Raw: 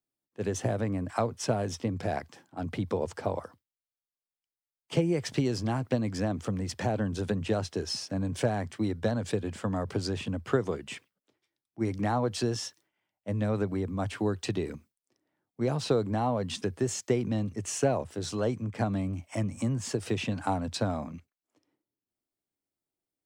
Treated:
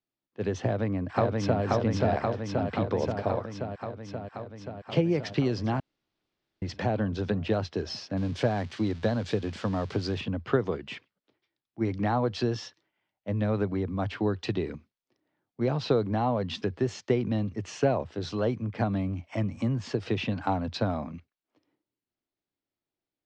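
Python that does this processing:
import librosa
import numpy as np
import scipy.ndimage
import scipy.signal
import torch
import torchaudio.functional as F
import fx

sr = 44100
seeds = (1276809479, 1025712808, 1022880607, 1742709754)

y = fx.echo_throw(x, sr, start_s=0.61, length_s=1.02, ms=530, feedback_pct=75, wet_db=-1.0)
y = fx.crossing_spikes(y, sr, level_db=-30.5, at=(8.17, 10.21))
y = fx.edit(y, sr, fx.room_tone_fill(start_s=5.8, length_s=0.82), tone=tone)
y = scipy.signal.sosfilt(scipy.signal.butter(4, 4700.0, 'lowpass', fs=sr, output='sos'), y)
y = y * 10.0 ** (1.5 / 20.0)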